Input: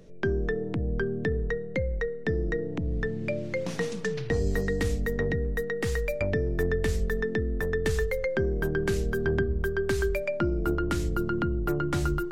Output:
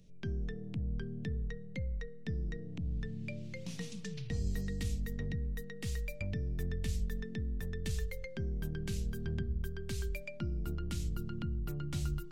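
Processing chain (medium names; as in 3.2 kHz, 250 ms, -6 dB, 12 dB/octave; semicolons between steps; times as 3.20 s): high-order bell 740 Hz -13 dB 3 oct; trim -6.5 dB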